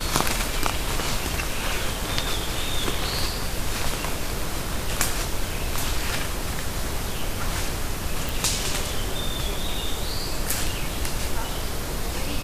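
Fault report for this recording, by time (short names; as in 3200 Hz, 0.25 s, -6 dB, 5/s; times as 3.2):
8.29 pop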